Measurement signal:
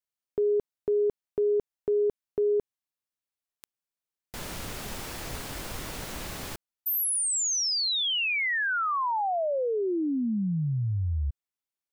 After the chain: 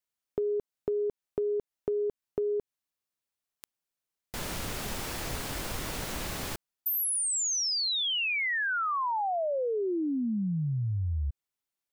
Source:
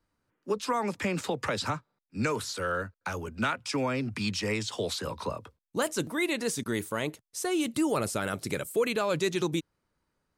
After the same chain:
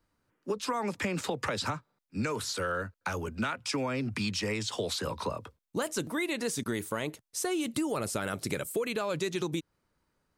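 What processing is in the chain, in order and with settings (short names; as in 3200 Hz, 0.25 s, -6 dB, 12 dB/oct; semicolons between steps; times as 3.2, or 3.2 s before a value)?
compressor, threshold -30 dBFS; gain +2 dB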